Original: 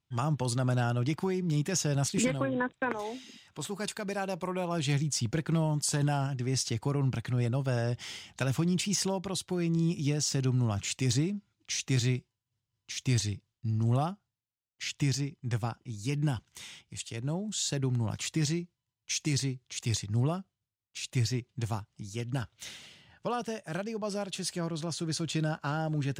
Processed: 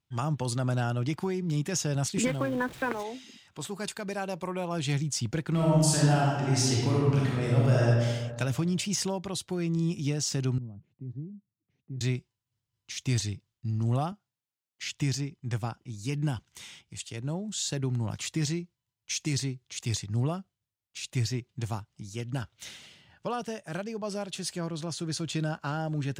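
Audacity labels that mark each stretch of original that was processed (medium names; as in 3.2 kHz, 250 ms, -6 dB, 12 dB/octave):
2.240000	3.030000	jump at every zero crossing of -40.5 dBFS
5.510000	7.870000	reverb throw, RT60 1.6 s, DRR -5 dB
10.580000	12.010000	ladder band-pass 180 Hz, resonance 30%
14.120000	14.870000	high-pass 140 Hz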